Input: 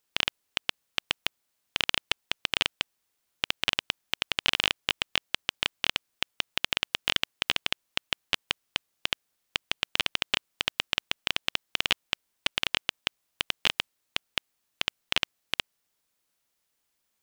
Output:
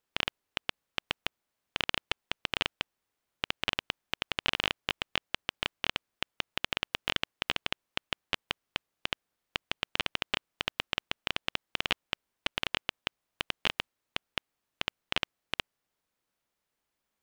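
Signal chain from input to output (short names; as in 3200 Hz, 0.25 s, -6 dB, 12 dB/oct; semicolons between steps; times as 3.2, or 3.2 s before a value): high shelf 3000 Hz -10.5 dB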